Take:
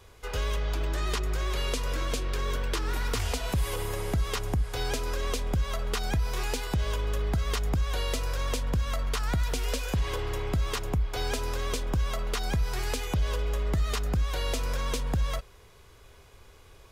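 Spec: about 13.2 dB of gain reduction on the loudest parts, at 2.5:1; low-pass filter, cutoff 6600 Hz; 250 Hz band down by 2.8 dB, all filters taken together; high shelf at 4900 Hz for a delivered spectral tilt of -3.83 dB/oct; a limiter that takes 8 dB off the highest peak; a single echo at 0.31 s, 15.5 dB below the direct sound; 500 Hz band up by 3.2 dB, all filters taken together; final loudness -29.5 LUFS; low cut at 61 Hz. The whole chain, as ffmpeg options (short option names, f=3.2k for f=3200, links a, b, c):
-af "highpass=61,lowpass=6.6k,equalizer=f=250:t=o:g=-6,equalizer=f=500:t=o:g=5.5,highshelf=f=4.9k:g=6,acompressor=threshold=-47dB:ratio=2.5,alimiter=level_in=10.5dB:limit=-24dB:level=0:latency=1,volume=-10.5dB,aecho=1:1:310:0.168,volume=16dB"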